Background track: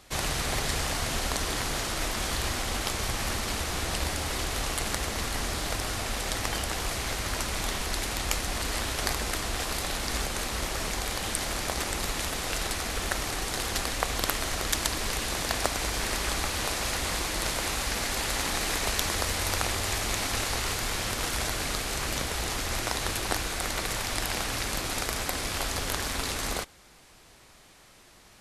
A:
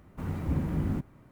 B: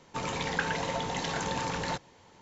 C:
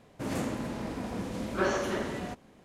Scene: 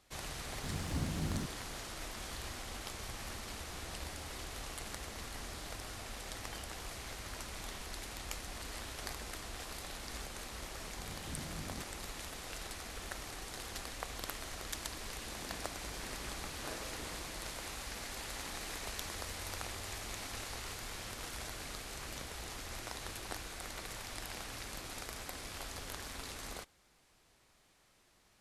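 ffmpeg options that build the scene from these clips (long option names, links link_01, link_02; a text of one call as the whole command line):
ffmpeg -i bed.wav -i cue0.wav -i cue1.wav -i cue2.wav -filter_complex "[1:a]asplit=2[link_01][link_02];[0:a]volume=-14dB[link_03];[3:a]aeval=exprs='val(0)*sin(2*PI*58*n/s)':channel_layout=same[link_04];[link_01]atrim=end=1.31,asetpts=PTS-STARTPTS,volume=-8dB,afade=type=in:duration=0.004:curve=hsin,afade=type=out:start_time=1.306:duration=0.004:curve=hsin,adelay=450[link_05];[link_02]atrim=end=1.31,asetpts=PTS-STARTPTS,volume=-17dB,afade=type=in:duration=0.004:curve=hsin,afade=type=out:start_time=1.306:duration=0.004:curve=hsin,adelay=10810[link_06];[link_04]atrim=end=2.64,asetpts=PTS-STARTPTS,volume=-16.5dB,afade=type=in:duration=0.004:curve=hsin,afade=type=out:start_time=2.636:duration=0.004:curve=hsin,adelay=15060[link_07];[link_03][link_05][link_06][link_07]amix=inputs=4:normalize=0" out.wav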